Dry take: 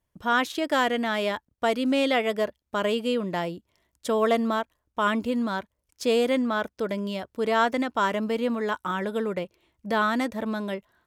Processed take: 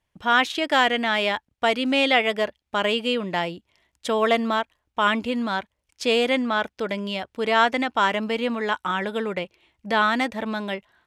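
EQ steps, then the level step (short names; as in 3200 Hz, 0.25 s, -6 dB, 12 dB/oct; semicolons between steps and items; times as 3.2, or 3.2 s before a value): LPF 11000 Hz 12 dB/oct; bell 800 Hz +6.5 dB 0.25 oct; bell 2600 Hz +9 dB 1.6 oct; 0.0 dB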